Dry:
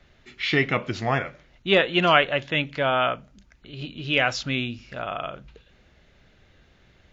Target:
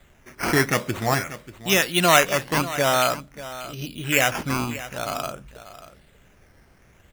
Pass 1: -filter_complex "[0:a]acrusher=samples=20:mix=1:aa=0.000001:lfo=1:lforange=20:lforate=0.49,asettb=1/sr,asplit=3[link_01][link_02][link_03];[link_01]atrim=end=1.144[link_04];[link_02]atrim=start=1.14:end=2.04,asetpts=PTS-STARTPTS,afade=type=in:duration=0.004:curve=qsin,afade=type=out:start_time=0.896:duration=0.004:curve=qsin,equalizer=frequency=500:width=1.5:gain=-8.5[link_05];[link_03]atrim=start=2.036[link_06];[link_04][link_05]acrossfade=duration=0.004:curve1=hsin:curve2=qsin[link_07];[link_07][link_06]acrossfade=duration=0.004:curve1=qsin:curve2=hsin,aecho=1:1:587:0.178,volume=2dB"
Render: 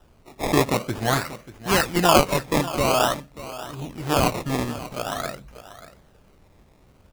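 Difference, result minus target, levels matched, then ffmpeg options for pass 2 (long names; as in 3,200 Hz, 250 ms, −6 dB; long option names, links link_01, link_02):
sample-and-hold swept by an LFO: distortion +7 dB
-filter_complex "[0:a]acrusher=samples=8:mix=1:aa=0.000001:lfo=1:lforange=8:lforate=0.49,asettb=1/sr,asplit=3[link_01][link_02][link_03];[link_01]atrim=end=1.144[link_04];[link_02]atrim=start=1.14:end=2.04,asetpts=PTS-STARTPTS,afade=type=in:duration=0.004:curve=qsin,afade=type=out:start_time=0.896:duration=0.004:curve=qsin,equalizer=frequency=500:width=1.5:gain=-8.5[link_05];[link_03]atrim=start=2.036[link_06];[link_04][link_05]acrossfade=duration=0.004:curve1=hsin:curve2=qsin[link_07];[link_07][link_06]acrossfade=duration=0.004:curve1=qsin:curve2=hsin,aecho=1:1:587:0.178,volume=2dB"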